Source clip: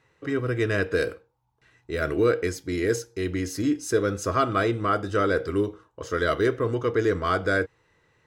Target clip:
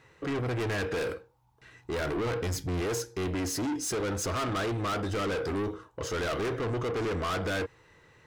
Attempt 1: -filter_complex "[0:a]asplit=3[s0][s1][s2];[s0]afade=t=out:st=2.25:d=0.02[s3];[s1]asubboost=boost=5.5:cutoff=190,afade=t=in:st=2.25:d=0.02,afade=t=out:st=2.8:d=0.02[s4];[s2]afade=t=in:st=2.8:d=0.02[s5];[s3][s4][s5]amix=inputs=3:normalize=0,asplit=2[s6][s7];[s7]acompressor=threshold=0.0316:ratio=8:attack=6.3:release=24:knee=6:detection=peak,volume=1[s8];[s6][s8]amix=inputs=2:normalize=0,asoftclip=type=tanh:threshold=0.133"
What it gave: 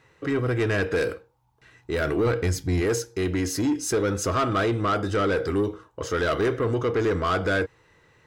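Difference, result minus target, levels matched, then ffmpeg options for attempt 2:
saturation: distortion -8 dB
-filter_complex "[0:a]asplit=3[s0][s1][s2];[s0]afade=t=out:st=2.25:d=0.02[s3];[s1]asubboost=boost=5.5:cutoff=190,afade=t=in:st=2.25:d=0.02,afade=t=out:st=2.8:d=0.02[s4];[s2]afade=t=in:st=2.8:d=0.02[s5];[s3][s4][s5]amix=inputs=3:normalize=0,asplit=2[s6][s7];[s7]acompressor=threshold=0.0316:ratio=8:attack=6.3:release=24:knee=6:detection=peak,volume=1[s8];[s6][s8]amix=inputs=2:normalize=0,asoftclip=type=tanh:threshold=0.0376"

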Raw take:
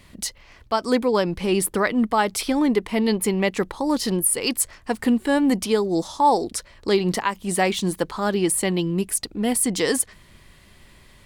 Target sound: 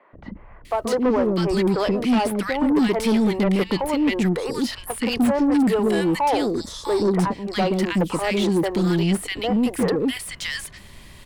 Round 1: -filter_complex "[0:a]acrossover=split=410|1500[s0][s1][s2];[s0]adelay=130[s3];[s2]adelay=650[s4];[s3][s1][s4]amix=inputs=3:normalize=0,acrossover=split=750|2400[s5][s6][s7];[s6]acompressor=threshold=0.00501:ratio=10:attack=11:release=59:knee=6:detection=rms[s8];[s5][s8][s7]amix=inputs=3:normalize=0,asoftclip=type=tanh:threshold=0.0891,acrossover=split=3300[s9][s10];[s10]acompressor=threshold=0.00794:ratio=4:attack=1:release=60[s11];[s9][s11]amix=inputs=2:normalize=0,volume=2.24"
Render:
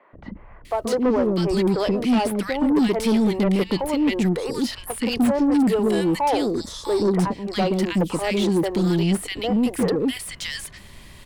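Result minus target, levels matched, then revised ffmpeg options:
compression: peak gain reduction +8.5 dB
-filter_complex "[0:a]acrossover=split=410|1500[s0][s1][s2];[s0]adelay=130[s3];[s2]adelay=650[s4];[s3][s1][s4]amix=inputs=3:normalize=0,acrossover=split=750|2400[s5][s6][s7];[s6]acompressor=threshold=0.015:ratio=10:attack=11:release=59:knee=6:detection=rms[s8];[s5][s8][s7]amix=inputs=3:normalize=0,asoftclip=type=tanh:threshold=0.0891,acrossover=split=3300[s9][s10];[s10]acompressor=threshold=0.00794:ratio=4:attack=1:release=60[s11];[s9][s11]amix=inputs=2:normalize=0,volume=2.24"

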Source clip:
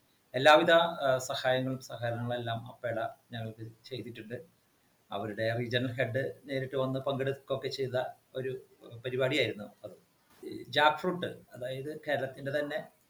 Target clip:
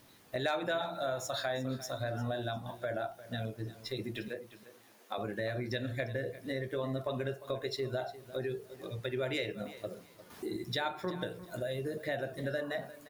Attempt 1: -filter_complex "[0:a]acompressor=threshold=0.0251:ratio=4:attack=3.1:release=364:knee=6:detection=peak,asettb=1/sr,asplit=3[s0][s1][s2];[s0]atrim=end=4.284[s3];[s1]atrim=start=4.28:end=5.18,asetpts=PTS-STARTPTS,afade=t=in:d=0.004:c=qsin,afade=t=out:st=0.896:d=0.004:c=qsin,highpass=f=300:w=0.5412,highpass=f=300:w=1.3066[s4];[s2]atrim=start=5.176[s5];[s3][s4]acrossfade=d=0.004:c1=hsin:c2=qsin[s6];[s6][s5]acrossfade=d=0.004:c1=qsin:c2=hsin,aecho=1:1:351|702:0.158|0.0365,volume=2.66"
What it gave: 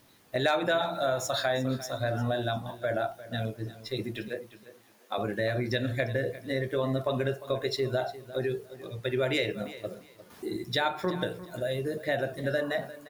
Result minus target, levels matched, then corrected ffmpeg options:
compression: peak gain reduction -6.5 dB
-filter_complex "[0:a]acompressor=threshold=0.00891:ratio=4:attack=3.1:release=364:knee=6:detection=peak,asettb=1/sr,asplit=3[s0][s1][s2];[s0]atrim=end=4.284[s3];[s1]atrim=start=4.28:end=5.18,asetpts=PTS-STARTPTS,afade=t=in:d=0.004:c=qsin,afade=t=out:st=0.896:d=0.004:c=qsin,highpass=f=300:w=0.5412,highpass=f=300:w=1.3066[s4];[s2]atrim=start=5.176[s5];[s3][s4]acrossfade=d=0.004:c1=hsin:c2=qsin[s6];[s6][s5]acrossfade=d=0.004:c1=qsin:c2=hsin,aecho=1:1:351|702:0.158|0.0365,volume=2.66"

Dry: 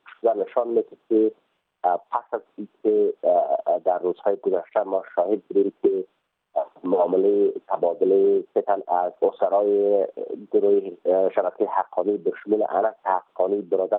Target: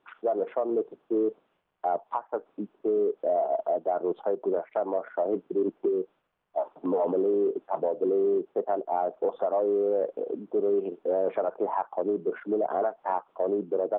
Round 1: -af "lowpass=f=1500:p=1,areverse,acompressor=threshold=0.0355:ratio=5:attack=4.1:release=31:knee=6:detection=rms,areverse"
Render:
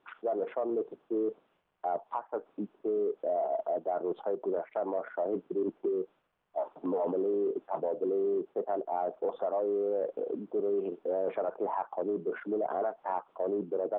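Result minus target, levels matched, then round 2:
compression: peak gain reduction +5 dB
-af "lowpass=f=1500:p=1,areverse,acompressor=threshold=0.075:ratio=5:attack=4.1:release=31:knee=6:detection=rms,areverse"

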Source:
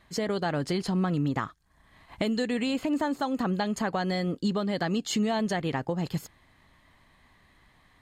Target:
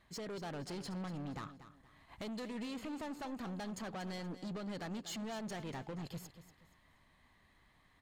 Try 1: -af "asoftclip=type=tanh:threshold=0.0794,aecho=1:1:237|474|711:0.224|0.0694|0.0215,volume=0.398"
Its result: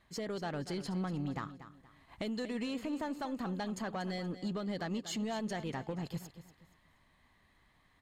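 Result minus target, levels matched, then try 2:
saturation: distortion -10 dB
-af "asoftclip=type=tanh:threshold=0.0251,aecho=1:1:237|474|711:0.224|0.0694|0.0215,volume=0.398"

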